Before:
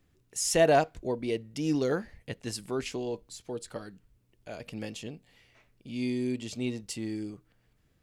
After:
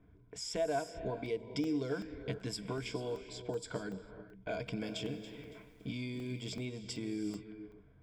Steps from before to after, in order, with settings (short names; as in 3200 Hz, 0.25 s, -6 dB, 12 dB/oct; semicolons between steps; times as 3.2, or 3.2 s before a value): compressor 8:1, threshold -40 dBFS, peak gain reduction 21.5 dB; high shelf 8100 Hz -11 dB; non-linear reverb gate 0.47 s rising, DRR 10.5 dB; low-pass opened by the level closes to 1400 Hz, open at -39 dBFS; ripple EQ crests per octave 1.7, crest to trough 12 dB; crackling interface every 0.38 s, samples 64, zero, from 0.88; 4.57–6.66 lo-fi delay 0.28 s, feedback 35%, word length 11-bit, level -12.5 dB; gain +4.5 dB